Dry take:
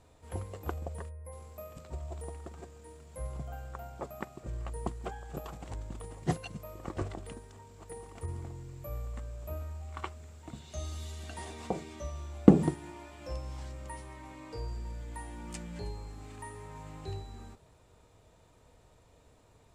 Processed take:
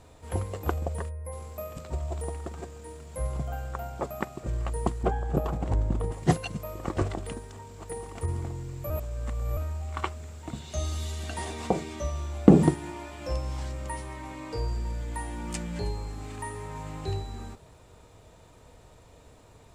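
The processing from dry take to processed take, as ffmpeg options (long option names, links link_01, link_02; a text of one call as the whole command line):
ffmpeg -i in.wav -filter_complex "[0:a]asettb=1/sr,asplit=3[link_01][link_02][link_03];[link_01]atrim=end=5.034[link_04];[link_02]atrim=start=5.03:end=6.12,asetpts=PTS-STARTPTS,afade=type=in:duration=0.004:curve=qsin,afade=type=out:start_time=1.086:duration=0.004:curve=qsin,tiltshelf=frequency=1400:gain=7[link_05];[link_03]atrim=start=6.116[link_06];[link_04][link_05]acrossfade=duration=0.004:curve1=hsin:curve2=qsin[link_07];[link_07][link_06]acrossfade=duration=0.004:curve1=qsin:curve2=hsin,asplit=3[link_08][link_09][link_10];[link_08]atrim=end=8.902[link_11];[link_09]atrim=start=8.898:end=9.572,asetpts=PTS-STARTPTS,areverse[link_12];[link_10]atrim=start=9.568[link_13];[link_11][link_12]acrossfade=duration=0.004:curve1=hsin:curve2=hsin[link_14];[link_14][link_13]acrossfade=duration=0.004:curve1=hsin:curve2=hsin,alimiter=level_in=9dB:limit=-1dB:release=50:level=0:latency=1,volume=-1dB" out.wav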